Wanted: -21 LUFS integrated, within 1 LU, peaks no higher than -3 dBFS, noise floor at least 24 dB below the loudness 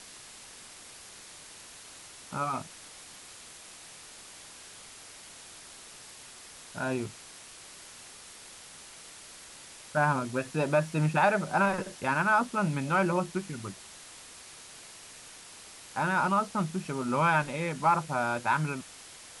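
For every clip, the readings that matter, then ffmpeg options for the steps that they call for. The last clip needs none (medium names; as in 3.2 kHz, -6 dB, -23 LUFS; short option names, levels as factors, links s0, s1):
noise floor -49 dBFS; noise floor target -53 dBFS; loudness -29.0 LUFS; peak level -12.0 dBFS; loudness target -21.0 LUFS
-> -af "afftdn=nr=6:nf=-49"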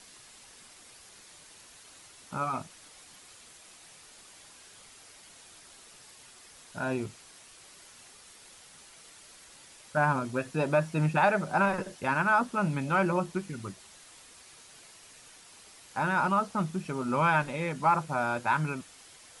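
noise floor -54 dBFS; loudness -29.0 LUFS; peak level -12.0 dBFS; loudness target -21.0 LUFS
-> -af "volume=2.51"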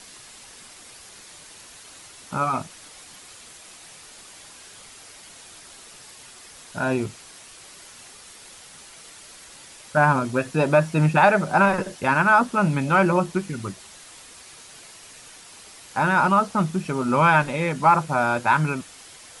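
loudness -21.0 LUFS; peak level -4.0 dBFS; noise floor -46 dBFS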